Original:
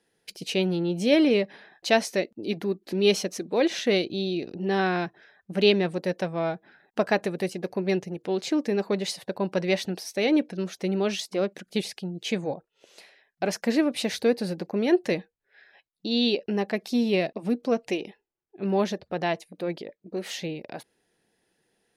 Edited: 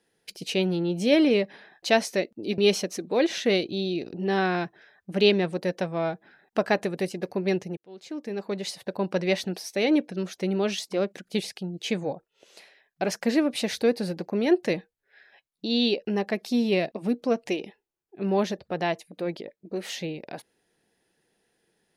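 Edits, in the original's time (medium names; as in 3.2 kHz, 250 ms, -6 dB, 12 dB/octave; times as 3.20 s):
2.58–2.99 s: delete
8.18–9.42 s: fade in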